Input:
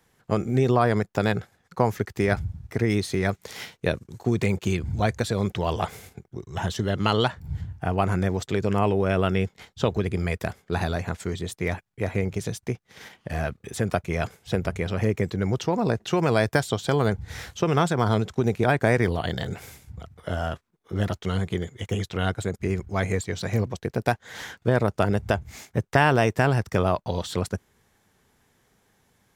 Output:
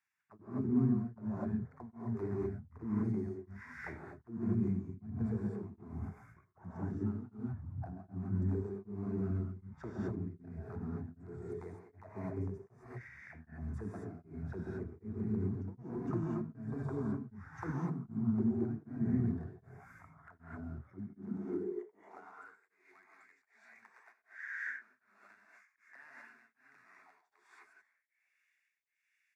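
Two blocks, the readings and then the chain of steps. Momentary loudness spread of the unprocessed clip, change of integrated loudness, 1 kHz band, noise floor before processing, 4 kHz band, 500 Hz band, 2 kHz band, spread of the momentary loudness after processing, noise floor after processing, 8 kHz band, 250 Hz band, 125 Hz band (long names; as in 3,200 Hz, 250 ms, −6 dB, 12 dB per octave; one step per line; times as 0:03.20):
11 LU, −13.0 dB, −24.5 dB, −67 dBFS, below −40 dB, −19.5 dB, −19.5 dB, 19 LU, −81 dBFS, below −30 dB, −9.5 dB, −13.5 dB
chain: high-pass filter 47 Hz 12 dB per octave
parametric band 76 Hz +12 dB 0.2 octaves
notch filter 4,100 Hz, Q 5.1
in parallel at −5 dB: wrap-around overflow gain 16.5 dB
on the sum: phaser with its sweep stopped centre 1,300 Hz, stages 4
envelope filter 240–2,900 Hz, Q 5.1, down, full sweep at −19.5 dBFS
on a send: echo with shifted repeats 325 ms, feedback 49%, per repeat −130 Hz, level −22 dB
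on the sum: reverb whose tail is shaped and stops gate 280 ms rising, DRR −4.5 dB
high-pass filter sweep 96 Hz → 2,100 Hz, 0:20.85–0:22.76
tremolo along a rectified sine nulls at 1.3 Hz
level −5 dB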